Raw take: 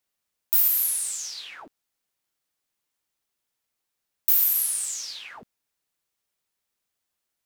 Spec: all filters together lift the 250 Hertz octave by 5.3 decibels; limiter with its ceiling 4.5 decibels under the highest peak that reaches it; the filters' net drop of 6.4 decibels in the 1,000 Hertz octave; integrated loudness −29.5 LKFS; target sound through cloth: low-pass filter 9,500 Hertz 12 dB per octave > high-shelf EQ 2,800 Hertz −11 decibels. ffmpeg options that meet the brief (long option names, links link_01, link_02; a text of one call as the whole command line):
ffmpeg -i in.wav -af "equalizer=frequency=250:width_type=o:gain=7,equalizer=frequency=1000:width_type=o:gain=-7,alimiter=limit=-12.5dB:level=0:latency=1,lowpass=9500,highshelf=frequency=2800:gain=-11,volume=11dB" out.wav